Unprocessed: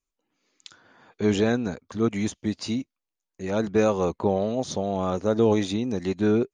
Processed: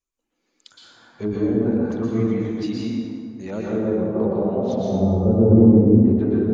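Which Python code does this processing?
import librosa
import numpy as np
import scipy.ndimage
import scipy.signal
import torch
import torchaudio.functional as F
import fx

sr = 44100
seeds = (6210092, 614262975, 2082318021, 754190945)

y = fx.spec_quant(x, sr, step_db=15)
y = fx.riaa(y, sr, side='playback', at=(4.8, 6.01))
y = fx.env_lowpass_down(y, sr, base_hz=500.0, full_db=-18.5)
y = fx.rev_plate(y, sr, seeds[0], rt60_s=2.1, hf_ratio=0.55, predelay_ms=105, drr_db=-5.5)
y = fx.dynamic_eq(y, sr, hz=840.0, q=0.91, threshold_db=-31.0, ratio=4.0, max_db=-5, at=(2.6, 4.15))
y = y * 10.0 ** (-2.5 / 20.0)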